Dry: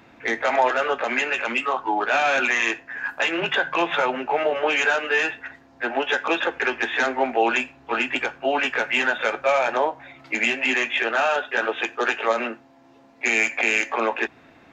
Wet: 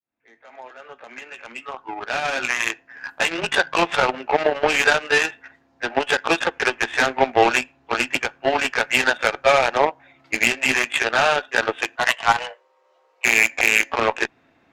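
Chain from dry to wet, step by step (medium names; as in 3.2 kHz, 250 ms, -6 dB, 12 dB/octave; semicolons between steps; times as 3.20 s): fade-in on the opening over 3.40 s; 11.96–13.25 s: frequency shift +250 Hz; Chebyshev shaper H 7 -19 dB, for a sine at -6.5 dBFS; trim +5 dB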